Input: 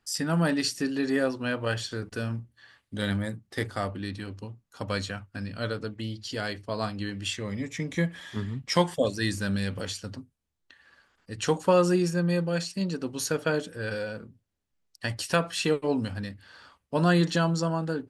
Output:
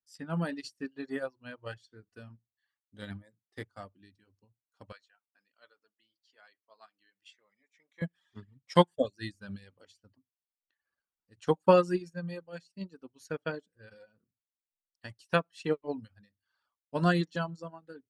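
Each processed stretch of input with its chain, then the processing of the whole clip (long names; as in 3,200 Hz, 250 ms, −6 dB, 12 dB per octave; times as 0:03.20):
0:04.92–0:08.02: high-pass filter 760 Hz + high-shelf EQ 7,300 Hz −12 dB
whole clip: reverb reduction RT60 0.96 s; high-shelf EQ 7,500 Hz −6.5 dB; expander for the loud parts 2.5 to 1, over −38 dBFS; level +3 dB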